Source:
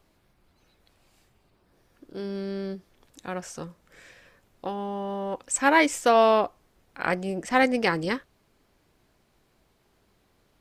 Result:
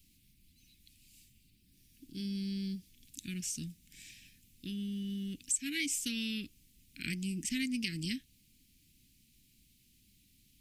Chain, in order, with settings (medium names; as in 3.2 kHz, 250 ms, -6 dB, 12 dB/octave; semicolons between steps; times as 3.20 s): elliptic band-stop 260–2500 Hz, stop band 60 dB; treble shelf 5.6 kHz +11 dB; compression 3:1, threshold -34 dBFS, peak gain reduction 14 dB